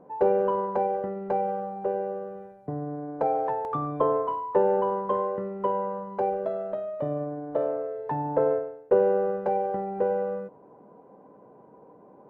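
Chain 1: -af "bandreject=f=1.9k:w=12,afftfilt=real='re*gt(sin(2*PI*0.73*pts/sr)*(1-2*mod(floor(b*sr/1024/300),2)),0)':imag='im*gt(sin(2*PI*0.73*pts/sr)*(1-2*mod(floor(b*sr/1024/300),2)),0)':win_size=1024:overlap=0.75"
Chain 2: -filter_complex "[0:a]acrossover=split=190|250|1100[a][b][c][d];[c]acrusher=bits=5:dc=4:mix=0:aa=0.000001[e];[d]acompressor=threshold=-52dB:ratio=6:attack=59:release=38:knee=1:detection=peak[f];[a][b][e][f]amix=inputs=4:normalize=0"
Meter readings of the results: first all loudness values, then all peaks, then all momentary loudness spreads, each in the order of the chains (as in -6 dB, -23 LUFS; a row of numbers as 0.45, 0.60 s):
-31.5, -28.0 LUFS; -10.5, -10.5 dBFS; 10, 13 LU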